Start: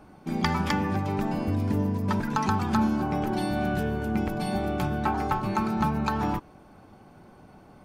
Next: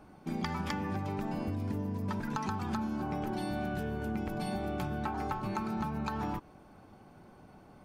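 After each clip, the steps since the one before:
downward compressor, threshold −27 dBFS, peak gain reduction 8 dB
level −4 dB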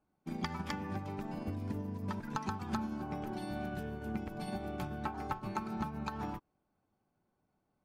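expander for the loud parts 2.5 to 1, over −48 dBFS
level +1 dB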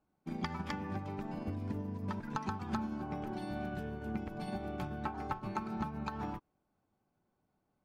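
high-shelf EQ 6,800 Hz −8.5 dB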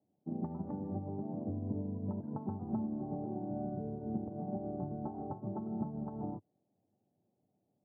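elliptic band-pass filter 100–690 Hz, stop band 60 dB
level +2 dB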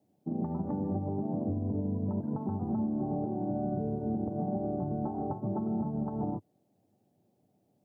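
brickwall limiter −32 dBFS, peak gain reduction 8 dB
level +8 dB

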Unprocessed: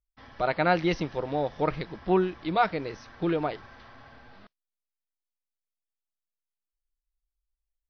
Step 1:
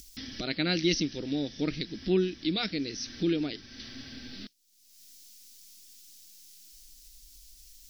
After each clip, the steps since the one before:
low-shelf EQ 440 Hz −12 dB
upward compression, threshold −36 dBFS
drawn EQ curve 160 Hz 0 dB, 270 Hz +8 dB, 520 Hz −14 dB, 990 Hz −29 dB, 1,600 Hz −14 dB, 5,500 Hz +8 dB, 8,500 Hz +2 dB
level +7.5 dB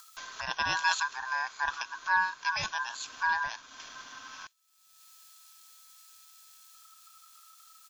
ring modulation 1,300 Hz
comb filter 1.2 ms, depth 31%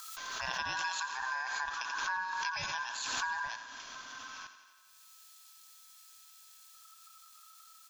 downward compressor 5 to 1, threshold −31 dBFS, peak gain reduction 9.5 dB
on a send: feedback echo with a high-pass in the loop 86 ms, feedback 70%, high-pass 230 Hz, level −11 dB
on the sum: background raised ahead of every attack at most 26 dB per second
level −2 dB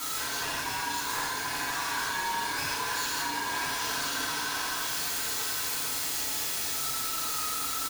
sign of each sample alone
single-tap delay 1,034 ms −6.5 dB
convolution reverb RT60 0.75 s, pre-delay 4 ms, DRR −8 dB

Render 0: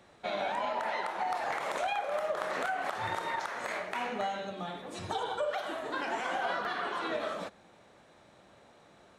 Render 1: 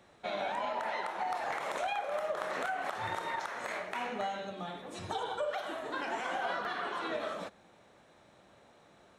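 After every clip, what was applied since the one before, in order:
notch filter 4,700 Hz, Q 21
level −2 dB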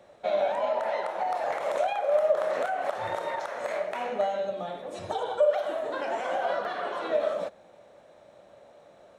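parametric band 580 Hz +13.5 dB 0.65 octaves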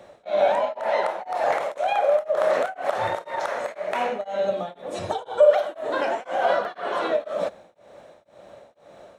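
tremolo along a rectified sine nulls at 2 Hz
level +8 dB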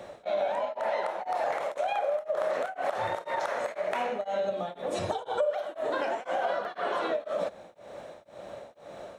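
downward compressor 4 to 1, threshold −32 dBFS, peak gain reduction 17.5 dB
level +3.5 dB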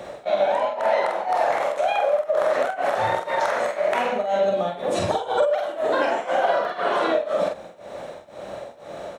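double-tracking delay 46 ms −4 dB
level +7 dB

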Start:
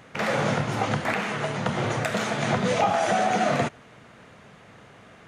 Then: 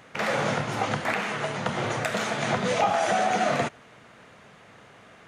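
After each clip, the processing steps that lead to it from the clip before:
low-shelf EQ 300 Hz −5.5 dB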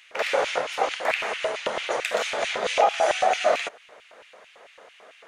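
auto-filter high-pass square 4.5 Hz 520–2,600 Hz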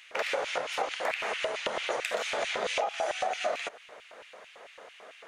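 downward compressor 5 to 1, threshold −28 dBFS, peak gain reduction 12.5 dB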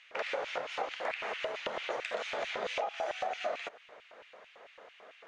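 high-frequency loss of the air 110 metres
level −4 dB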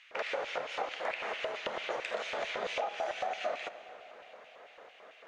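convolution reverb RT60 4.7 s, pre-delay 47 ms, DRR 13 dB

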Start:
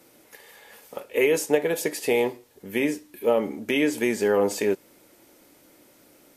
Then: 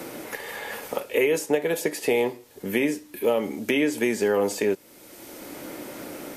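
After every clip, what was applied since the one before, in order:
multiband upward and downward compressor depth 70%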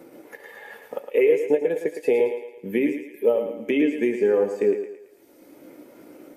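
transient designer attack +1 dB, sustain −6 dB
on a send: feedback echo with a high-pass in the loop 111 ms, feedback 60%, high-pass 260 Hz, level −5 dB
on the sum: every bin expanded away from the loudest bin 1.5 to 1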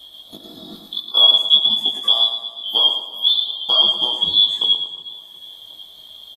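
band-splitting scrambler in four parts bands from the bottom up 2413
double-tracking delay 19 ms −2 dB
repeating echo 363 ms, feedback 56%, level −19 dB
level +3 dB

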